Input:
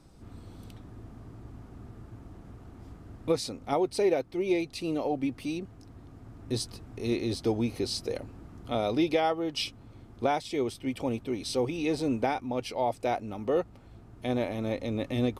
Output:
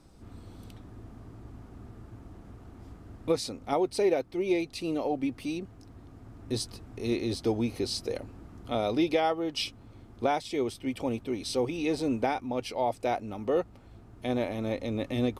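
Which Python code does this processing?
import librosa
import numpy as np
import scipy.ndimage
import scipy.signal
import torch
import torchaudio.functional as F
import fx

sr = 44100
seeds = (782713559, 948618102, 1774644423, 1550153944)

y = fx.peak_eq(x, sr, hz=140.0, db=-4.0, octaves=0.35)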